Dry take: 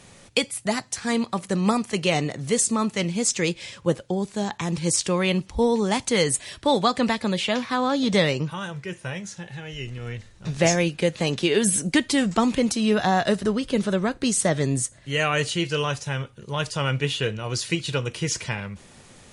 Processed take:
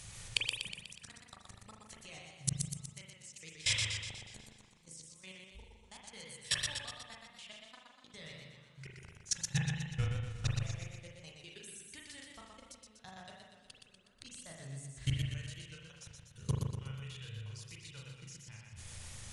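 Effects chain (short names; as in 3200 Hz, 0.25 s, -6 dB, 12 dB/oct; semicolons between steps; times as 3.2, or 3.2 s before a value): flipped gate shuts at -24 dBFS, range -36 dB; in parallel at -3 dB: compressor 12:1, threshold -59 dBFS, peak gain reduction 29 dB; on the sum: EQ curve 110 Hz 0 dB, 190 Hz -15 dB, 300 Hz -19 dB, 7000 Hz 0 dB; level quantiser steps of 22 dB; reverb, pre-delay 37 ms, DRR 1 dB; warbling echo 0.122 s, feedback 56%, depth 77 cents, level -4 dB; gain +14.5 dB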